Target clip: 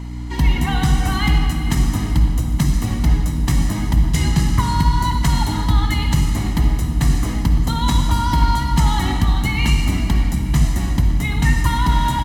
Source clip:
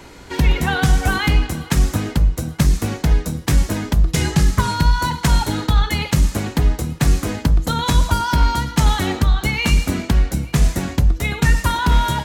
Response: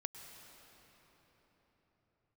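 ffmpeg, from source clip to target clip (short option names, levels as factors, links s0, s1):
-filter_complex "[0:a]aecho=1:1:1:0.57,aeval=exprs='val(0)+0.0708*(sin(2*PI*60*n/s)+sin(2*PI*2*60*n/s)/2+sin(2*PI*3*60*n/s)/3+sin(2*PI*4*60*n/s)/4+sin(2*PI*5*60*n/s)/5)':c=same[s0];[1:a]atrim=start_sample=2205,asetrate=88200,aresample=44100[s1];[s0][s1]afir=irnorm=-1:irlink=0,volume=1.88"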